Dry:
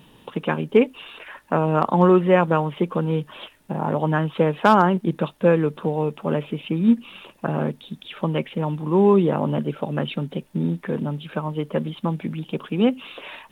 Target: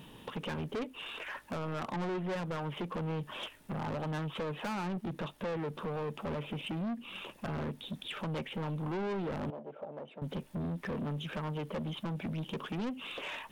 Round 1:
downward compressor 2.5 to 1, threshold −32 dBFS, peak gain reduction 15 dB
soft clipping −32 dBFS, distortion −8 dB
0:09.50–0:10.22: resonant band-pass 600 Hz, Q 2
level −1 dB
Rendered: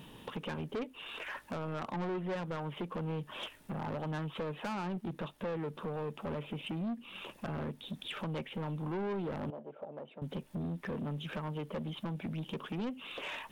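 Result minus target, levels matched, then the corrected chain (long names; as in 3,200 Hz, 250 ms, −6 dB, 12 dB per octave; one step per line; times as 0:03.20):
downward compressor: peak gain reduction +4 dB
downward compressor 2.5 to 1, threshold −25.5 dBFS, peak gain reduction 11 dB
soft clipping −32 dBFS, distortion −5 dB
0:09.50–0:10.22: resonant band-pass 600 Hz, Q 2
level −1 dB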